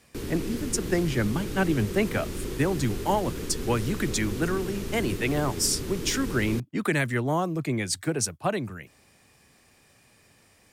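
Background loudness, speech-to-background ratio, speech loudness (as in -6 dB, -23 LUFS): -34.5 LUFS, 7.0 dB, -27.5 LUFS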